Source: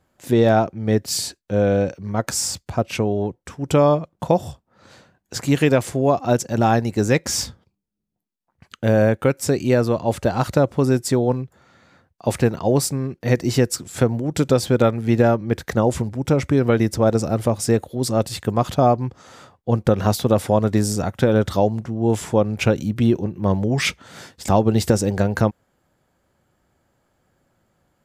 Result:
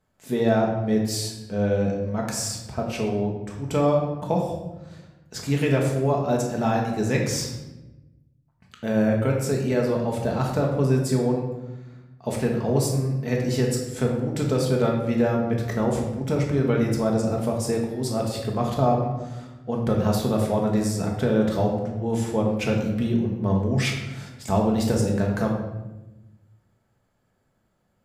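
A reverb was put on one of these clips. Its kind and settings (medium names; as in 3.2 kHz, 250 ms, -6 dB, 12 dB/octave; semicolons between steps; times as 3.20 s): simulated room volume 450 m³, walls mixed, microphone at 1.5 m; trim -8.5 dB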